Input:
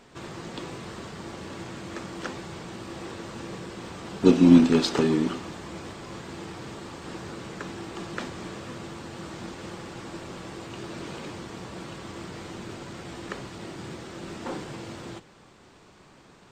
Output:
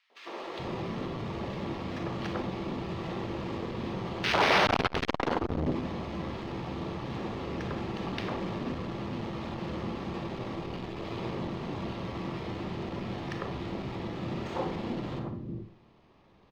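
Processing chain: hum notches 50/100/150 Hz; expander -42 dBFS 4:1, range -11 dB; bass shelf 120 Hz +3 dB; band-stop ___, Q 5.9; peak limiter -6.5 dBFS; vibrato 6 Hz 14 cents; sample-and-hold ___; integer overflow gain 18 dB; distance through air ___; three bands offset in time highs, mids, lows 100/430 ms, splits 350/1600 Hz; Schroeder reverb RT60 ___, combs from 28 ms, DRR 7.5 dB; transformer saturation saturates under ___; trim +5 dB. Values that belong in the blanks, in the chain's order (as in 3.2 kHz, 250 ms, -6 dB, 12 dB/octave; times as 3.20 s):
1.5 kHz, 6×, 210 m, 0.49 s, 840 Hz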